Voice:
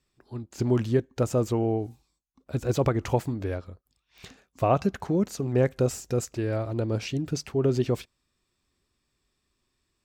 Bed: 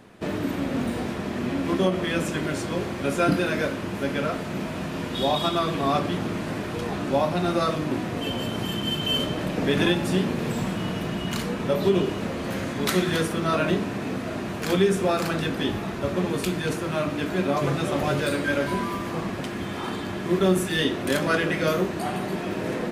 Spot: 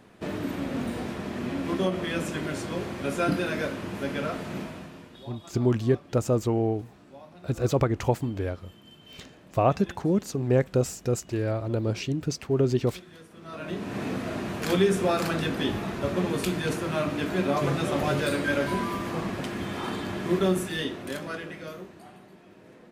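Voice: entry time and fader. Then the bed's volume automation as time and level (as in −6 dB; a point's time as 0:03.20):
4.95 s, +0.5 dB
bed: 0:04.58 −4 dB
0:05.33 −25 dB
0:13.27 −25 dB
0:13.99 −1.5 dB
0:20.30 −1.5 dB
0:22.37 −23.5 dB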